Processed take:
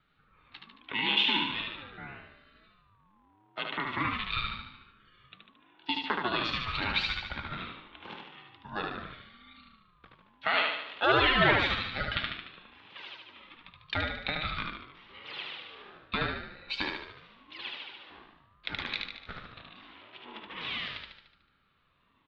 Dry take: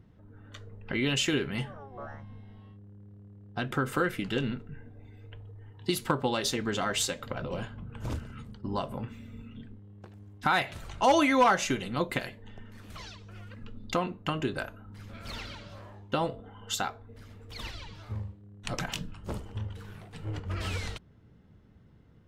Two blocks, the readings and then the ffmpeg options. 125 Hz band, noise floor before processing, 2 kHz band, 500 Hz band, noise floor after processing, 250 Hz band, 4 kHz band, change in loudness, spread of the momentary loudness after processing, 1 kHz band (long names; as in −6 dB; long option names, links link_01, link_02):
−6.5 dB, −57 dBFS, +4.0 dB, −4.5 dB, −67 dBFS, −7.0 dB, +4.5 dB, +0.5 dB, 23 LU, −2.5 dB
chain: -filter_complex "[0:a]aexciter=amount=3.5:drive=6.5:freq=2400,highpass=frequency=340:width_type=q:width=0.5412,highpass=frequency=340:width_type=q:width=1.307,lowpass=frequency=2900:width_type=q:width=0.5176,lowpass=frequency=2900:width_type=q:width=0.7071,lowpass=frequency=2900:width_type=q:width=1.932,afreqshift=230,asplit=2[link_01][link_02];[link_02]aecho=0:1:74|148|222|296|370|444|518:0.668|0.361|0.195|0.105|0.0568|0.0307|0.0166[link_03];[link_01][link_03]amix=inputs=2:normalize=0,aeval=exprs='val(0)*sin(2*PI*510*n/s+510*0.4/0.42*sin(2*PI*0.42*n/s))':channel_layout=same"